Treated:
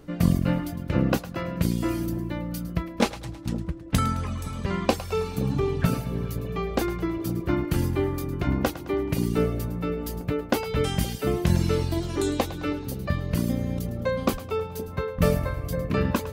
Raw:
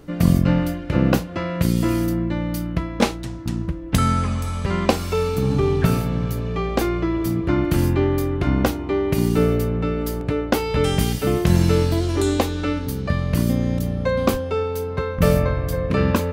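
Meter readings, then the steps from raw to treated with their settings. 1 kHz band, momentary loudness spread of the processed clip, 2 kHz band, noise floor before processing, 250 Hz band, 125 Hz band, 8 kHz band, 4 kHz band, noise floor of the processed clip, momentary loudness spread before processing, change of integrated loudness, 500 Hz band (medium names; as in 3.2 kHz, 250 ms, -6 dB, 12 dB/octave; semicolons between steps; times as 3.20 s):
-5.5 dB, 7 LU, -5.0 dB, -30 dBFS, -6.0 dB, -6.0 dB, -5.0 dB, -5.0 dB, -38 dBFS, 7 LU, -6.0 dB, -6.0 dB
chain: reverb removal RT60 0.77 s; two-band feedback delay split 560 Hz, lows 519 ms, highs 107 ms, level -14 dB; trim -4 dB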